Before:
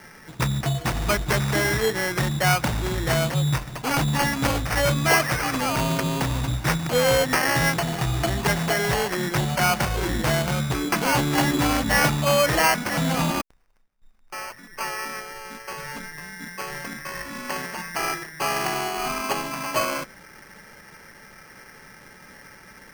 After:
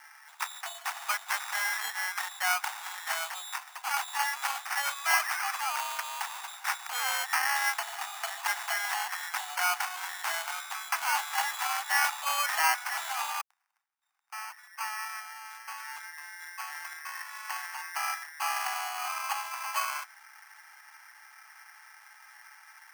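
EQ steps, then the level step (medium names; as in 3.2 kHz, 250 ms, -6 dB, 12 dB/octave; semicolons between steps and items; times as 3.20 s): Chebyshev high-pass 780 Hz, order 5; peaking EQ 4 kHz -3.5 dB 0.75 oct; -4.5 dB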